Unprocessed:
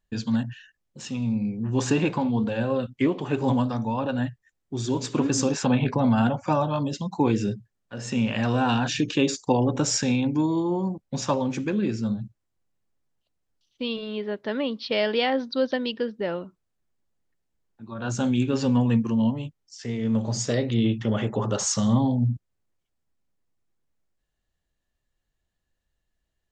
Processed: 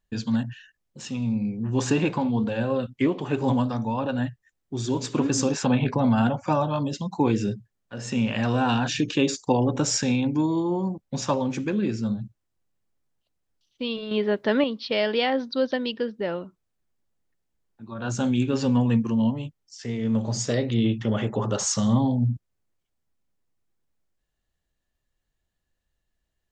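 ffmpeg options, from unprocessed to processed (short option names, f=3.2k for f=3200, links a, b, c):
-filter_complex "[0:a]asettb=1/sr,asplit=3[a][b][c];[a]atrim=end=14.114[d];[b]atrim=start=14.11:end=14.64,asetpts=PTS-STARTPTS,afade=t=in:d=0.004:c=qsin,afade=t=out:st=0.526:d=0.004:c=qsin,acontrast=67[e];[c]atrim=start=14.636[f];[d][e]acrossfade=d=0.004:c1=hsin:c2=qsin[g];[g][f]acrossfade=d=0.004:c1=qsin:c2=hsin"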